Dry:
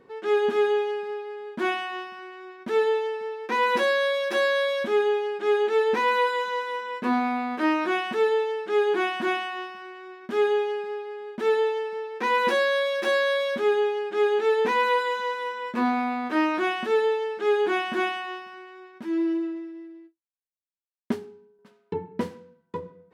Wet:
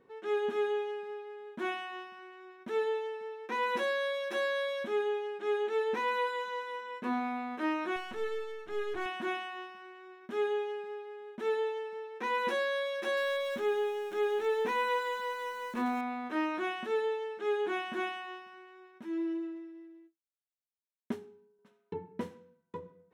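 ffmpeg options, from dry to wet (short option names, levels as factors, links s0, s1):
-filter_complex "[0:a]asettb=1/sr,asplit=3[s0][s1][s2];[s0]atrim=end=7.964[s3];[s1]atrim=start=7.96:end=9.06,asetpts=PTS-STARTPTS,afade=t=in:d=0.004:c=qsin,afade=t=out:st=1.096:d=0.004:c=qsin,aeval=exprs='if(lt(val(0),0),0.251*val(0),val(0))':c=same[s4];[s2]atrim=start=9.056[s5];[s3][s4]acrossfade=d=0.004:c1=hsin:c2=qsin[s6];[s6][s5]acrossfade=d=0.004:c1=qsin:c2=hsin,asettb=1/sr,asplit=3[s7][s8][s9];[s7]atrim=end=13.174[s10];[s8]atrim=start=13.17:end=16.01,asetpts=PTS-STARTPTS,afade=t=in:d=0.004:c=qsin,afade=t=out:st=2.836:d=0.004:c=qsin,aeval=exprs='val(0)+0.5*0.0158*sgn(val(0))':c=same[s11];[s9]atrim=start=16.006[s12];[s10][s11]acrossfade=d=0.004:c1=hsin:c2=qsin[s13];[s13][s12]acrossfade=d=0.004:c1=qsin:c2=hsin,bandreject=f=4700:w=6.3,volume=0.355"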